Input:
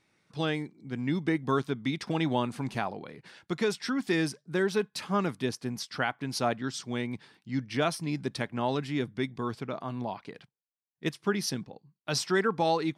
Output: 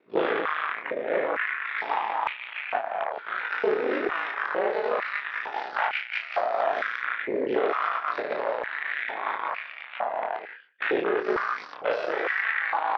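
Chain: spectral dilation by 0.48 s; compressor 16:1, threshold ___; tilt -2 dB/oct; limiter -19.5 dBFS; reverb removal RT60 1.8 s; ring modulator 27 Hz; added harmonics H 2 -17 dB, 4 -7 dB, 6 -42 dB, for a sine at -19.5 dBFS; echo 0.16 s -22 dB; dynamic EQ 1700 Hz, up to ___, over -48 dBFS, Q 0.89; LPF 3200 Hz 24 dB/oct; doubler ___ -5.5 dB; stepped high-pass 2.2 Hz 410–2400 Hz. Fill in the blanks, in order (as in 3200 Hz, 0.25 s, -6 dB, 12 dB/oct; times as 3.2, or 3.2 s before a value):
-22 dBFS, +5 dB, 27 ms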